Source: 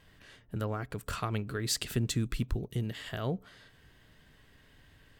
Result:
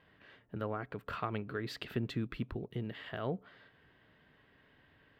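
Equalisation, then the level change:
high-pass filter 280 Hz 6 dB per octave
high-frequency loss of the air 380 metres
parametric band 14,000 Hz +13 dB 0.46 octaves
+1.0 dB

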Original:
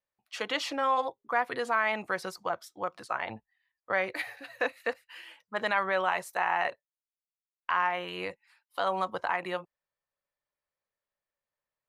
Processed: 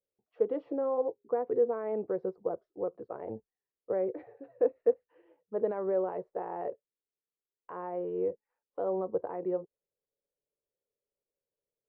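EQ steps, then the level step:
low-pass with resonance 440 Hz, resonance Q 4.9
high-frequency loss of the air 60 metres
−2.0 dB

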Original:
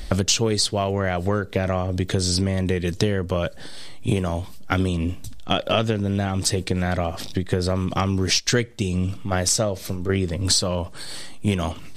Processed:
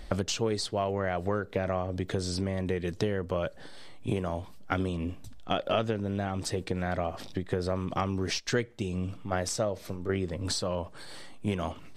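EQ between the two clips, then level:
low-shelf EQ 310 Hz −8 dB
high-shelf EQ 2,300 Hz −12 dB
−3.0 dB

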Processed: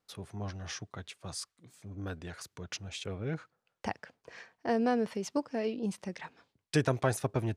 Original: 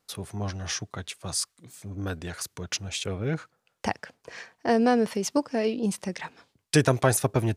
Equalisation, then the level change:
high-shelf EQ 6,900 Hz −10 dB
−7.0 dB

